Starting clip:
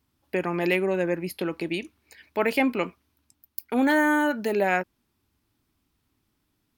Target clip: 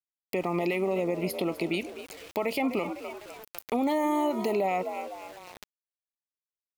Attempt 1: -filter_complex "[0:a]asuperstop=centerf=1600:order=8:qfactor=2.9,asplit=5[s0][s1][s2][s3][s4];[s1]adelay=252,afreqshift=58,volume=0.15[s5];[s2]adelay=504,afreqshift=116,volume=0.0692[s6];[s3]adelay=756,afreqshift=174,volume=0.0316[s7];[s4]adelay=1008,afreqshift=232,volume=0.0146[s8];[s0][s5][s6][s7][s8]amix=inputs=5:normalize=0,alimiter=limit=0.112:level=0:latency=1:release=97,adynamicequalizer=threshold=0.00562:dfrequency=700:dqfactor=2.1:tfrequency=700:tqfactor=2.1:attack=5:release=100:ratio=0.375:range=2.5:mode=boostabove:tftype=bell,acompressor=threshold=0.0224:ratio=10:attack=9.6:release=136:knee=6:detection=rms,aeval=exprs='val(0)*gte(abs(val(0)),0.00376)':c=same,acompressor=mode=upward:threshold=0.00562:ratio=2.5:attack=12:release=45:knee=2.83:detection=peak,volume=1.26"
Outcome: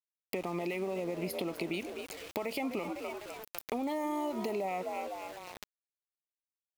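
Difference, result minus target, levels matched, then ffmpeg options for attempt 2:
compression: peak gain reduction +8 dB
-filter_complex "[0:a]asuperstop=centerf=1600:order=8:qfactor=2.9,asplit=5[s0][s1][s2][s3][s4];[s1]adelay=252,afreqshift=58,volume=0.15[s5];[s2]adelay=504,afreqshift=116,volume=0.0692[s6];[s3]adelay=756,afreqshift=174,volume=0.0316[s7];[s4]adelay=1008,afreqshift=232,volume=0.0146[s8];[s0][s5][s6][s7][s8]amix=inputs=5:normalize=0,alimiter=limit=0.112:level=0:latency=1:release=97,adynamicequalizer=threshold=0.00562:dfrequency=700:dqfactor=2.1:tfrequency=700:tqfactor=2.1:attack=5:release=100:ratio=0.375:range=2.5:mode=boostabove:tftype=bell,acompressor=threshold=0.0668:ratio=10:attack=9.6:release=136:knee=6:detection=rms,aeval=exprs='val(0)*gte(abs(val(0)),0.00376)':c=same,acompressor=mode=upward:threshold=0.00562:ratio=2.5:attack=12:release=45:knee=2.83:detection=peak,volume=1.26"

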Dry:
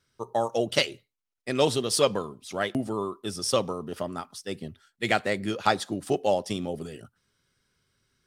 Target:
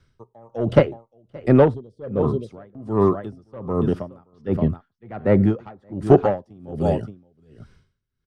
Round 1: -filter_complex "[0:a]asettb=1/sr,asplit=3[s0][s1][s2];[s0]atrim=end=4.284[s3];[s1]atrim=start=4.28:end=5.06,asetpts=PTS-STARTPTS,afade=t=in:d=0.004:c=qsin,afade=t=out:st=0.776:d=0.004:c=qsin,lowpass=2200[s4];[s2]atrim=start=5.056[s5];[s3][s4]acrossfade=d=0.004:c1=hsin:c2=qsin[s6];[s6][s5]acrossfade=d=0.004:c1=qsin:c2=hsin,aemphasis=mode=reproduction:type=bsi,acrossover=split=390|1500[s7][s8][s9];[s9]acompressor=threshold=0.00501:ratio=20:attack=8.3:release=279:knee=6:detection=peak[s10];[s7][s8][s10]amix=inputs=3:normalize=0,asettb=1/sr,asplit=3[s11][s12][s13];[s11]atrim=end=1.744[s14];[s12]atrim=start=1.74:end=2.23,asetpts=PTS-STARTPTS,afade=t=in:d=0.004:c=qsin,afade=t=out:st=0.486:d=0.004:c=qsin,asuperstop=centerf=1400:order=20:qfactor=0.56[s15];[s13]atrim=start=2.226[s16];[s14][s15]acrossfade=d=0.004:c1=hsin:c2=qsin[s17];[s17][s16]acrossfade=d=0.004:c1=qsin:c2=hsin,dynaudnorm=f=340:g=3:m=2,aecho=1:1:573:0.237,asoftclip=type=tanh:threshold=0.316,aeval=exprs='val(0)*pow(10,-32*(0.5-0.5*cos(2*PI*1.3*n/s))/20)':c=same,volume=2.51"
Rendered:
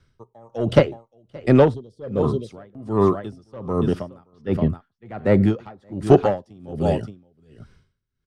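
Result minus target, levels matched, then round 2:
compression: peak gain reduction -10 dB
-filter_complex "[0:a]asettb=1/sr,asplit=3[s0][s1][s2];[s0]atrim=end=4.284[s3];[s1]atrim=start=4.28:end=5.06,asetpts=PTS-STARTPTS,afade=t=in:d=0.004:c=qsin,afade=t=out:st=0.776:d=0.004:c=qsin,lowpass=2200[s4];[s2]atrim=start=5.056[s5];[s3][s4]acrossfade=d=0.004:c1=hsin:c2=qsin[s6];[s6][s5]acrossfade=d=0.004:c1=qsin:c2=hsin,aemphasis=mode=reproduction:type=bsi,acrossover=split=390|1500[s7][s8][s9];[s9]acompressor=threshold=0.0015:ratio=20:attack=8.3:release=279:knee=6:detection=peak[s10];[s7][s8][s10]amix=inputs=3:normalize=0,asettb=1/sr,asplit=3[s11][s12][s13];[s11]atrim=end=1.744[s14];[s12]atrim=start=1.74:end=2.23,asetpts=PTS-STARTPTS,afade=t=in:d=0.004:c=qsin,afade=t=out:st=0.486:d=0.004:c=qsin,asuperstop=centerf=1400:order=20:qfactor=0.56[s15];[s13]atrim=start=2.226[s16];[s14][s15]acrossfade=d=0.004:c1=hsin:c2=qsin[s17];[s17][s16]acrossfade=d=0.004:c1=qsin:c2=hsin,dynaudnorm=f=340:g=3:m=2,aecho=1:1:573:0.237,asoftclip=type=tanh:threshold=0.316,aeval=exprs='val(0)*pow(10,-32*(0.5-0.5*cos(2*PI*1.3*n/s))/20)':c=same,volume=2.51"

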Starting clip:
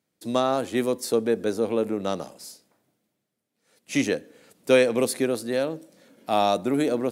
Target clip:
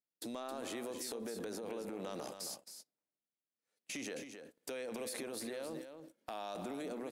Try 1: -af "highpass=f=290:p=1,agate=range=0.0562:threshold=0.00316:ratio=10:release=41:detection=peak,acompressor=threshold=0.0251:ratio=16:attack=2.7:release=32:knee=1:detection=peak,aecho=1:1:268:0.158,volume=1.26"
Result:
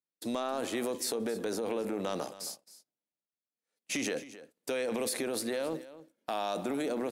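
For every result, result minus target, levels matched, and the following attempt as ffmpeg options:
compression: peak gain reduction -10 dB; echo-to-direct -7.5 dB
-af "highpass=f=290:p=1,agate=range=0.0562:threshold=0.00316:ratio=10:release=41:detection=peak,acompressor=threshold=0.0075:ratio=16:attack=2.7:release=32:knee=1:detection=peak,aecho=1:1:268:0.158,volume=1.26"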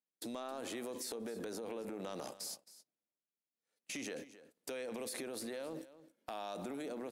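echo-to-direct -7.5 dB
-af "highpass=f=290:p=1,agate=range=0.0562:threshold=0.00316:ratio=10:release=41:detection=peak,acompressor=threshold=0.0075:ratio=16:attack=2.7:release=32:knee=1:detection=peak,aecho=1:1:268:0.376,volume=1.26"

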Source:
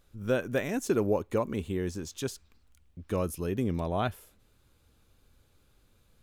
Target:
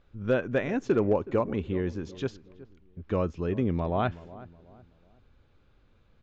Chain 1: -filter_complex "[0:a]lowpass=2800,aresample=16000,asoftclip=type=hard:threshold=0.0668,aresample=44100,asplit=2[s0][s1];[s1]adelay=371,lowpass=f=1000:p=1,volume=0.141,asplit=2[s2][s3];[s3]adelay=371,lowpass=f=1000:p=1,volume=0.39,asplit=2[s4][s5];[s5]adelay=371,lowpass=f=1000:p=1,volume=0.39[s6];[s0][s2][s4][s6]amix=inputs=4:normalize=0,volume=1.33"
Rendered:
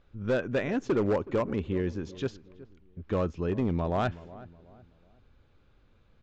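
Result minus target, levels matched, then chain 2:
hard clipper: distortion +20 dB
-filter_complex "[0:a]lowpass=2800,aresample=16000,asoftclip=type=hard:threshold=0.141,aresample=44100,asplit=2[s0][s1];[s1]adelay=371,lowpass=f=1000:p=1,volume=0.141,asplit=2[s2][s3];[s3]adelay=371,lowpass=f=1000:p=1,volume=0.39,asplit=2[s4][s5];[s5]adelay=371,lowpass=f=1000:p=1,volume=0.39[s6];[s0][s2][s4][s6]amix=inputs=4:normalize=0,volume=1.33"

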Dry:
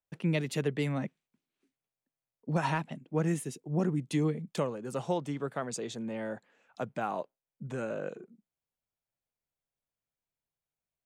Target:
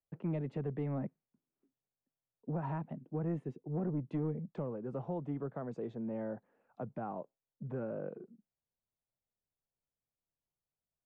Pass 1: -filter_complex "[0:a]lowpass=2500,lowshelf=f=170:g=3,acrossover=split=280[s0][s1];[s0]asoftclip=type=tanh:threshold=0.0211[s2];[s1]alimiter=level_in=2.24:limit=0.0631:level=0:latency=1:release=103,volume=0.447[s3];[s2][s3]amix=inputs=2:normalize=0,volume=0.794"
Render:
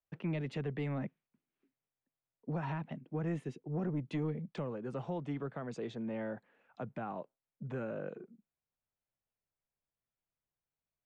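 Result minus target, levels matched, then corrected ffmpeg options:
2 kHz band +8.5 dB
-filter_complex "[0:a]lowpass=960,lowshelf=f=170:g=3,acrossover=split=280[s0][s1];[s0]asoftclip=type=tanh:threshold=0.0211[s2];[s1]alimiter=level_in=2.24:limit=0.0631:level=0:latency=1:release=103,volume=0.447[s3];[s2][s3]amix=inputs=2:normalize=0,volume=0.794"

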